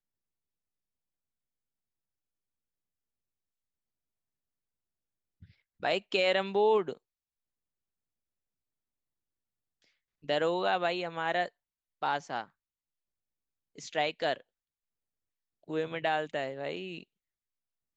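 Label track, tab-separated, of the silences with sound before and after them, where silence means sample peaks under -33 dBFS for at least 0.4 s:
6.930000	10.290000	silence
11.460000	12.030000	silence
12.430000	13.880000	silence
14.340000	15.700000	silence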